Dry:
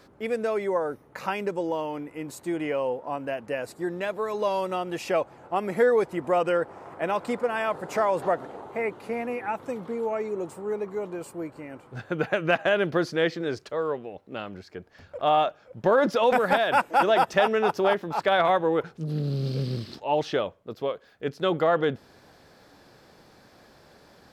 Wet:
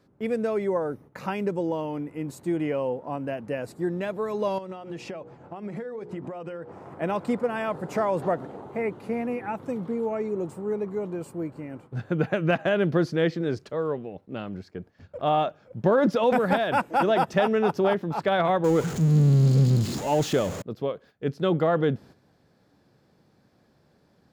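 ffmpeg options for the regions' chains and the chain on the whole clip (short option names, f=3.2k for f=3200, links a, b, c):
-filter_complex "[0:a]asettb=1/sr,asplit=3[a][b][c];[a]atrim=end=4.584[d];[b]atrim=start=4.58:end=6.72,asetpts=PTS-STARTPTS,afade=t=in:d=0.004:c=qsin,afade=t=out:st=2.136:d=0.004:c=qsin,lowpass=7k,bandreject=f=60:t=h:w=6,bandreject=f=120:t=h:w=6,bandreject=f=180:t=h:w=6,bandreject=f=240:t=h:w=6,bandreject=f=300:t=h:w=6,bandreject=f=360:t=h:w=6,bandreject=f=420:t=h:w=6,bandreject=f=480:t=h:w=6,acompressor=threshold=-34dB:ratio=6:attack=3.2:release=140:knee=1:detection=peak[e];[c]atrim=start=6.716[f];[d][e]acrossfade=d=0.004:c1=hsin:c2=qsin[g];[g][f]acrossfade=d=0.004:c1=qsin:c2=hsin,asettb=1/sr,asplit=3[h][i][j];[h]atrim=end=18.644[k];[i]atrim=start=18.64:end=20.62,asetpts=PTS-STARTPTS,afade=t=in:d=0.004:c=qsin,afade=t=out:st=1.976:d=0.004:c=qsin,aeval=exprs='val(0)+0.5*0.0355*sgn(val(0))':c=same,equalizer=f=6.9k:t=o:w=0.27:g=13[l];[j]atrim=start=20.616[m];[k][l]acrossfade=d=0.004:c1=hsin:c2=qsin[n];[n][m]acrossfade=d=0.004:c1=qsin:c2=hsin,agate=range=-10dB:threshold=-49dB:ratio=16:detection=peak,equalizer=f=150:w=0.49:g=11.5,volume=-4dB"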